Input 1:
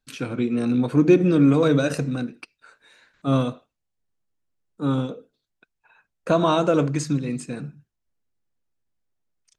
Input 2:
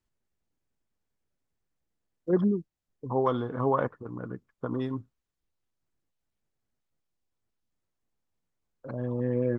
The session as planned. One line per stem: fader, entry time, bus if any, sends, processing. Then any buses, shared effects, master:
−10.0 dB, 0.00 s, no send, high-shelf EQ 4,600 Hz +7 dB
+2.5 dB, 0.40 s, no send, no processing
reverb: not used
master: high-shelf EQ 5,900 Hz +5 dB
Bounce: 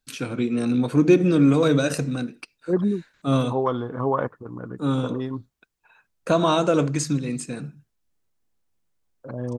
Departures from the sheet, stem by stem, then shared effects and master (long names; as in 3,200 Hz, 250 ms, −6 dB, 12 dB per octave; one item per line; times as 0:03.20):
stem 1 −10.0 dB → −0.5 dB
master: missing high-shelf EQ 5,900 Hz +5 dB